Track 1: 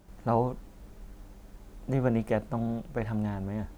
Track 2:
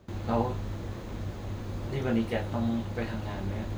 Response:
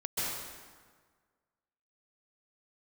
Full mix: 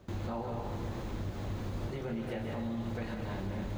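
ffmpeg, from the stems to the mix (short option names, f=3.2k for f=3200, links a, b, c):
-filter_complex "[0:a]volume=-16.5dB,asplit=2[a][b];[1:a]volume=-1,volume=-1.5dB,asplit=2[c][d];[d]volume=-14dB[e];[b]apad=whole_len=166565[f];[c][f]sidechaincompress=threshold=-47dB:ratio=8:attack=16:release=582[g];[2:a]atrim=start_sample=2205[h];[e][h]afir=irnorm=-1:irlink=0[i];[a][g][i]amix=inputs=3:normalize=0,alimiter=level_in=4dB:limit=-24dB:level=0:latency=1:release=76,volume=-4dB"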